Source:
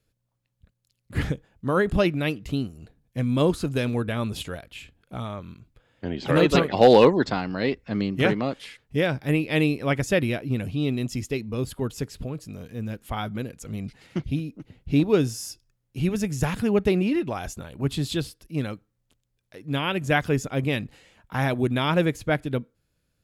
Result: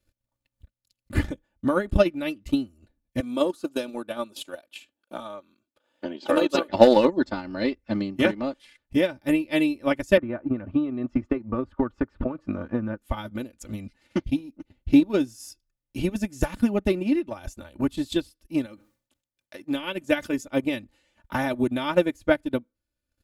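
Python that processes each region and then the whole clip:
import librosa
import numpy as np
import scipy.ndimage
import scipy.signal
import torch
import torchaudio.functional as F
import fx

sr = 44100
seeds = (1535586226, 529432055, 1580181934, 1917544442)

y = fx.chain(x, sr, fx.highpass(hz=340.0, slope=12),
    fx.peak_eq(hz=2000.0, db=-7.0, octaves=0.54), at=(3.2, 6.69))
y = fx.chain(y, sr, fx.lowpass_res(hz=1300.0, q=2.6),
    fx.band_squash(depth_pct=100), at=(10.17, 12.98))
y = fx.chain(y, sr, fx.highpass(hz=220.0, slope=6),
    fx.dynamic_eq(hz=1000.0, q=0.89, threshold_db=-37.0, ratio=4.0, max_db=-4),
    fx.sustainer(db_per_s=120.0), at=(18.66, 20.47))
y = fx.dynamic_eq(y, sr, hz=2300.0, q=0.72, threshold_db=-40.0, ratio=4.0, max_db=-3)
y = y + 0.82 * np.pad(y, (int(3.4 * sr / 1000.0), 0))[:len(y)]
y = fx.transient(y, sr, attack_db=9, sustain_db=-9)
y = y * librosa.db_to_amplitude(-5.0)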